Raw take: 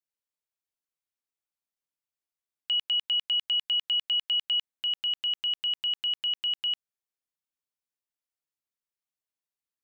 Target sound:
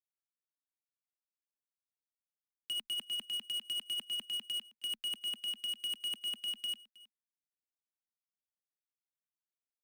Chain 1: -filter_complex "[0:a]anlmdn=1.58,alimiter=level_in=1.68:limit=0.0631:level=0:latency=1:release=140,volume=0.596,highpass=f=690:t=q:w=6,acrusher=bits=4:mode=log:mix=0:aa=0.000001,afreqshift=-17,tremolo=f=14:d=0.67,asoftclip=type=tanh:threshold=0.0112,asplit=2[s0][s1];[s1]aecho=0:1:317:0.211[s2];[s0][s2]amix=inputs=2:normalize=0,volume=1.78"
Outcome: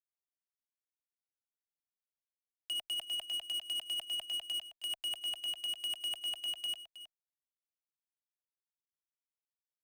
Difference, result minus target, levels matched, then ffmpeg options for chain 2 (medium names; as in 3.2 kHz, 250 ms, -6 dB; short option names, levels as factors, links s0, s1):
500 Hz band +5.5 dB; echo-to-direct +7.5 dB
-filter_complex "[0:a]anlmdn=1.58,alimiter=level_in=1.68:limit=0.0631:level=0:latency=1:release=140,volume=0.596,highpass=f=240:t=q:w=6,acrusher=bits=4:mode=log:mix=0:aa=0.000001,afreqshift=-17,tremolo=f=14:d=0.67,asoftclip=type=tanh:threshold=0.0112,asplit=2[s0][s1];[s1]aecho=0:1:317:0.0891[s2];[s0][s2]amix=inputs=2:normalize=0,volume=1.78"